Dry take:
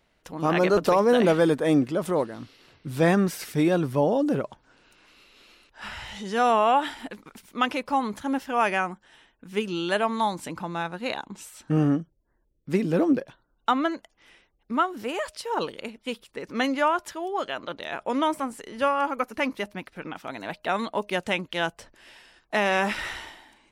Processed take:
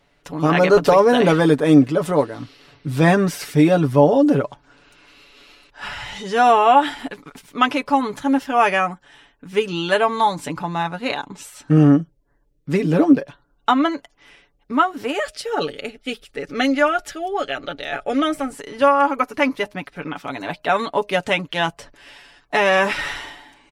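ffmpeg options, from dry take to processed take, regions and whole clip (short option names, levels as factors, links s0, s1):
-filter_complex "[0:a]asettb=1/sr,asplit=3[s0][s1][s2];[s0]atrim=end=15.124[s3];[s1]atrim=start=15.12:end=18.53,asetpts=PTS-STARTPTS,afade=t=in:d=0.004:c=qsin,afade=t=out:st=3.406:d=0.004:c=qsin,asubboost=boost=6:cutoff=70,asuperstop=centerf=1000:order=4:qfactor=3.3[s4];[s2]atrim=start=18.526[s5];[s3][s4]acrossfade=d=0.004:c1=hsin:c2=qsin[s6];[s6][s5]acrossfade=d=0.004:c1=qsin:c2=hsin,highshelf=f=10000:g=-6.5,aecho=1:1:7:0.65,volume=1.88"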